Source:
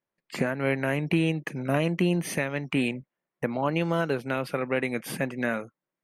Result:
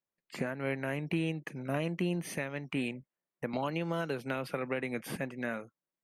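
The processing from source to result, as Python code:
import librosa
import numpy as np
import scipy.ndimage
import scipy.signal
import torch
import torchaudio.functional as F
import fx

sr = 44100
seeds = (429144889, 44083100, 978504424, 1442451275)

y = fx.band_squash(x, sr, depth_pct=100, at=(3.53, 5.16))
y = y * librosa.db_to_amplitude(-8.0)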